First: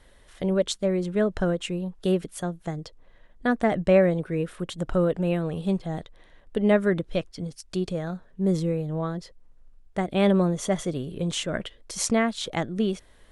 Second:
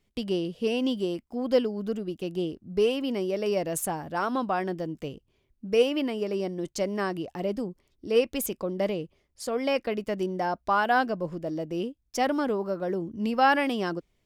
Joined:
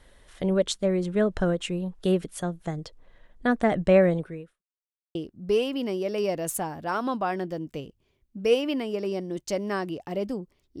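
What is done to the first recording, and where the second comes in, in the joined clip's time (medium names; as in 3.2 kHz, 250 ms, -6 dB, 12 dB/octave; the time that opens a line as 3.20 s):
first
4.15–4.62 s: fade out quadratic
4.62–5.15 s: mute
5.15 s: go over to second from 2.43 s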